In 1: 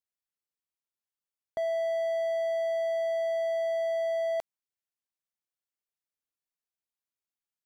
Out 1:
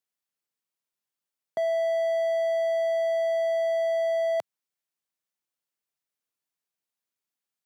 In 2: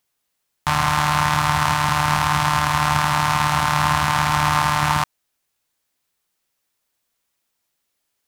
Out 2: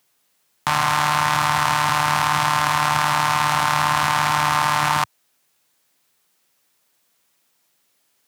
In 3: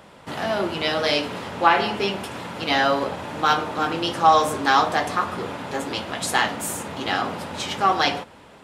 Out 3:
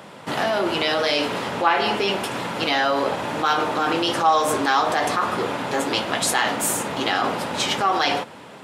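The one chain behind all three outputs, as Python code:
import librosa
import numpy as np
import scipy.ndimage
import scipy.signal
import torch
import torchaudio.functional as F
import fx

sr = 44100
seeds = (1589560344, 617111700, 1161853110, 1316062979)

p1 = scipy.signal.sosfilt(scipy.signal.butter(4, 110.0, 'highpass', fs=sr, output='sos'), x)
p2 = fx.dynamic_eq(p1, sr, hz=170.0, q=1.5, threshold_db=-40.0, ratio=4.0, max_db=-7)
p3 = fx.over_compress(p2, sr, threshold_db=-27.0, ratio=-1.0)
p4 = p2 + (p3 * librosa.db_to_amplitude(1.5))
y = p4 * librosa.db_to_amplitude(-3.0)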